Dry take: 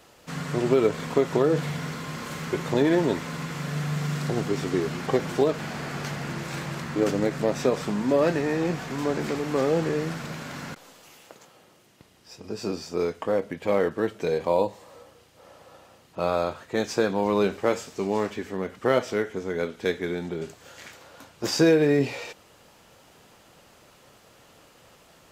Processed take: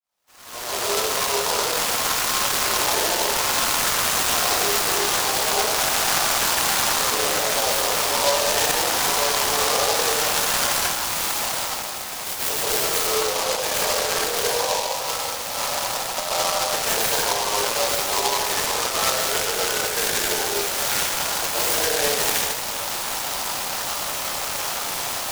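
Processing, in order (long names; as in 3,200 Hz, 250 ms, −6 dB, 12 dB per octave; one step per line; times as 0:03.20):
fade in at the beginning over 4.41 s
high-pass filter 710 Hz 24 dB per octave
automatic gain control gain up to 16.5 dB
brickwall limiter −12 dBFS, peak gain reduction 10 dB
downward compressor 6 to 1, threshold −33 dBFS, peak gain reduction 15 dB
dense smooth reverb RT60 1.4 s, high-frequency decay 0.8×, pre-delay 110 ms, DRR −8.5 dB
short delay modulated by noise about 4,300 Hz, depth 0.14 ms
level +5 dB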